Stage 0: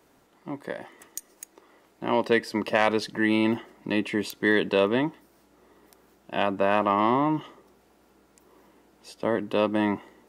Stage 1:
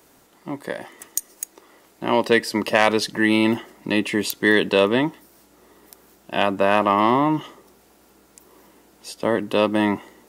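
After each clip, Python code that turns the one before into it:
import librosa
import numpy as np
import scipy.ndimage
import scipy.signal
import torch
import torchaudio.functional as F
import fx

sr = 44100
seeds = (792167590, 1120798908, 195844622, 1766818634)

y = fx.high_shelf(x, sr, hz=4600.0, db=9.5)
y = y * 10.0 ** (4.5 / 20.0)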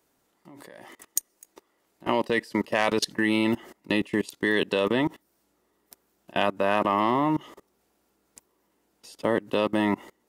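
y = fx.level_steps(x, sr, step_db=24)
y = y * 10.0 ** (1.0 / 20.0)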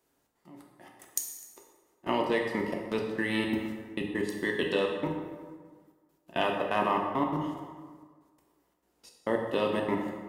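y = fx.step_gate(x, sr, bpm=170, pattern='xxx.xxx..x.x', floor_db=-60.0, edge_ms=4.5)
y = fx.rev_plate(y, sr, seeds[0], rt60_s=1.6, hf_ratio=0.6, predelay_ms=0, drr_db=0.0)
y = y * 10.0 ** (-5.5 / 20.0)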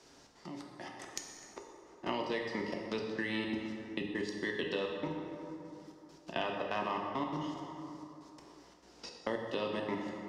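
y = fx.lowpass_res(x, sr, hz=5400.0, q=2.8)
y = fx.band_squash(y, sr, depth_pct=70)
y = y * 10.0 ** (-7.0 / 20.0)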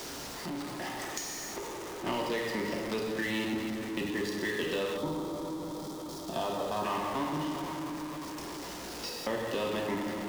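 y = x + 0.5 * 10.0 ** (-44.5 / 20.0) * np.sign(x)
y = fx.power_curve(y, sr, exponent=0.7)
y = fx.spec_box(y, sr, start_s=4.98, length_s=1.86, low_hz=1400.0, high_hz=3100.0, gain_db=-10)
y = y * 10.0 ** (-2.0 / 20.0)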